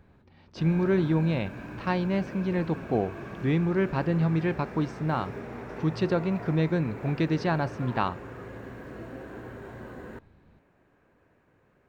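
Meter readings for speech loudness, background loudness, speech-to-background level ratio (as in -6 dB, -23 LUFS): -28.0 LUFS, -40.5 LUFS, 12.5 dB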